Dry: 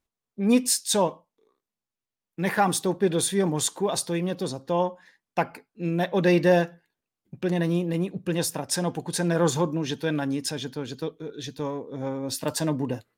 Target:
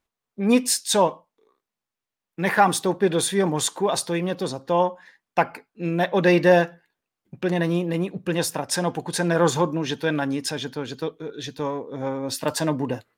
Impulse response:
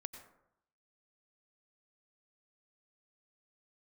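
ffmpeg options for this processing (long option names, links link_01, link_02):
-af "equalizer=frequency=1300:width=0.37:gain=6"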